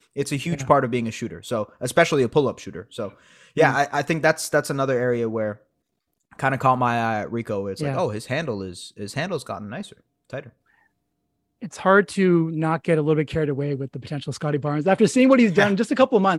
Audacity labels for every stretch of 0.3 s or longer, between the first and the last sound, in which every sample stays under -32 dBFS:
3.090000	3.570000	silence
5.530000	6.390000	silence
9.920000	10.330000	silence
10.470000	11.630000	silence